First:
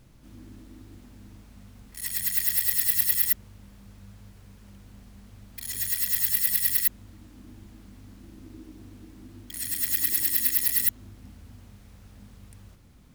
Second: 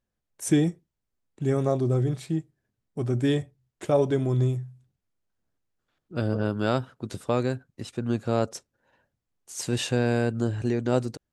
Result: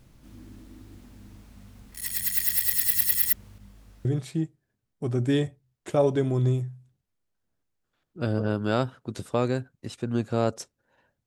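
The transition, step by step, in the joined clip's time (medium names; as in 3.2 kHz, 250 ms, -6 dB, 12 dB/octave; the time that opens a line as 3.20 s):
first
3.58–4.05 s: detune thickener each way 13 cents
4.05 s: go over to second from 2.00 s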